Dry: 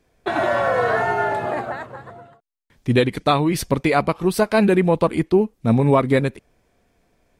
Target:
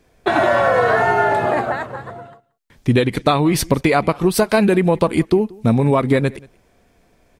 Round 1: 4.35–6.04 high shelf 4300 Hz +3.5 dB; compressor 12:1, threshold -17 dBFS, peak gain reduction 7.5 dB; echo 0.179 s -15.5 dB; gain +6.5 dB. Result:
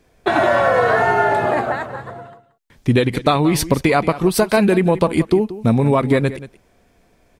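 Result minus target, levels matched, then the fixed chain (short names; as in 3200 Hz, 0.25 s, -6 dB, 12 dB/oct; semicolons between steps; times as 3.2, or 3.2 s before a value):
echo-to-direct +9 dB
4.35–6.04 high shelf 4300 Hz +3.5 dB; compressor 12:1, threshold -17 dBFS, peak gain reduction 7.5 dB; echo 0.179 s -24.5 dB; gain +6.5 dB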